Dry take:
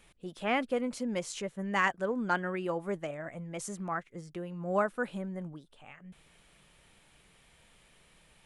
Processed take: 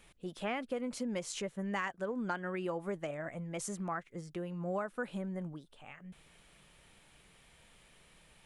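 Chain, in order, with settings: compression 5:1, threshold -33 dBFS, peak gain reduction 10.5 dB

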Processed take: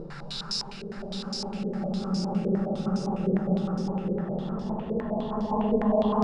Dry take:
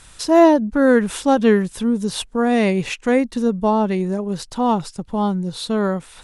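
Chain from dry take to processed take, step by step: tape stop on the ending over 1.08 s; Paulstretch 26×, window 0.25 s, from 4.88 s; step-sequenced low-pass 9.8 Hz 460–5200 Hz

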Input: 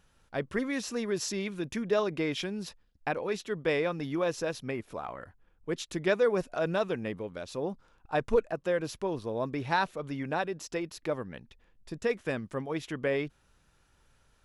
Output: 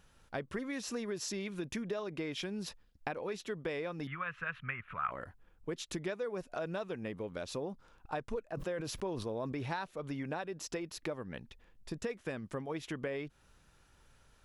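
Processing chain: compression 6:1, threshold -37 dBFS, peak gain reduction 16.5 dB; 4.07–5.11 s: FFT filter 170 Hz 0 dB, 310 Hz -19 dB, 850 Hz -7 dB, 1.3 kHz +14 dB, 2.8 kHz +5 dB, 5 kHz -26 dB; 8.44–9.68 s: decay stretcher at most 36 dB/s; trim +1.5 dB

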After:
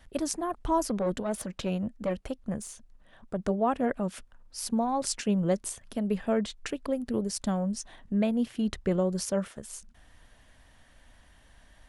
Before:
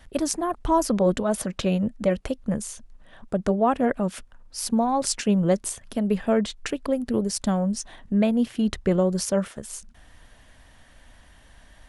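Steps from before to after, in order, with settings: 0.88–3.38 s: valve stage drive 15 dB, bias 0.4; trim -5.5 dB

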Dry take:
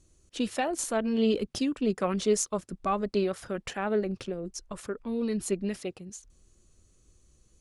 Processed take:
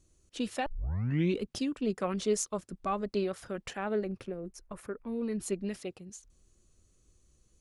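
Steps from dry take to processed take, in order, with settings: 0.66 s: tape start 0.75 s; 4.08–5.40 s: high-order bell 4.9 kHz -8 dB; trim -4 dB

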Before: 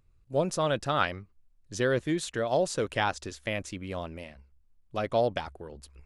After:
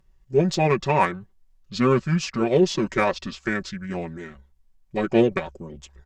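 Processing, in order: Chebyshev shaper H 5 -28 dB, 7 -27 dB, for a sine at -11 dBFS; comb 5.3 ms, depth 69%; formant shift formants -6 st; trim +5.5 dB

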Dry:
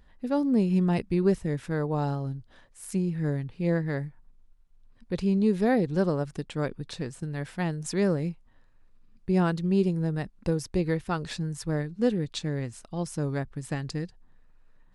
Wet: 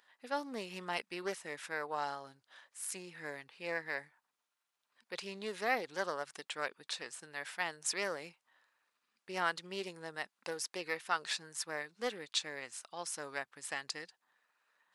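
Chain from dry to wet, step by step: high-pass 1 kHz 12 dB/octave; loudspeaker Doppler distortion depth 0.16 ms; trim +1.5 dB

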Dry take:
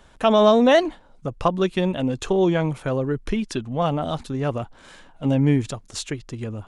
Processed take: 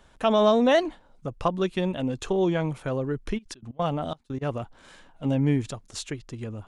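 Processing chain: 3.37–4.41 s: trance gate ".x.x.xxxx." 178 bpm -24 dB; trim -4.5 dB

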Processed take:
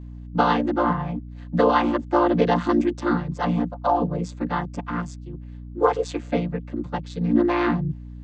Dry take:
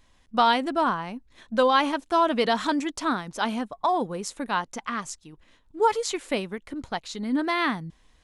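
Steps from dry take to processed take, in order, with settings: vocoder on a held chord major triad, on A#2; hum 60 Hz, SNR 14 dB; trim +4 dB

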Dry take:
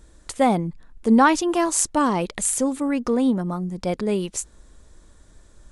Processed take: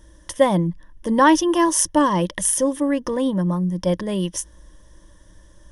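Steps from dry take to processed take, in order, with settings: rippled EQ curve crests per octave 1.2, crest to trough 13 dB

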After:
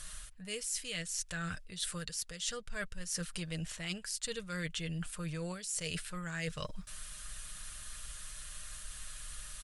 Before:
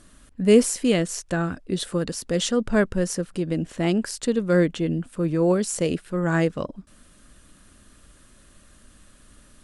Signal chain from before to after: amplifier tone stack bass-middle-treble 10-0-10; comb 6.5 ms, depth 42%; dynamic bell 880 Hz, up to -8 dB, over -53 dBFS, Q 1.1; reverse; compression 12:1, threshold -46 dBFS, peak gain reduction 23 dB; reverse; trim +10.5 dB

